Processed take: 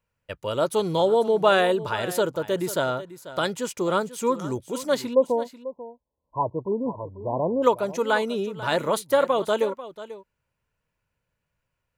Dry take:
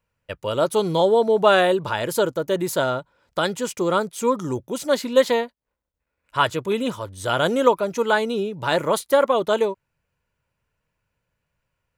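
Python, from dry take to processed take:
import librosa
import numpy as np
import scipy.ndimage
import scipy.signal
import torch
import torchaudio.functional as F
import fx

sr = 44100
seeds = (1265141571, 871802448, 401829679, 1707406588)

y = fx.brickwall_lowpass(x, sr, high_hz=1100.0, at=(5.13, 7.62), fade=0.02)
y = y + 10.0 ** (-15.0 / 20.0) * np.pad(y, (int(491 * sr / 1000.0), 0))[:len(y)]
y = y * 10.0 ** (-3.0 / 20.0)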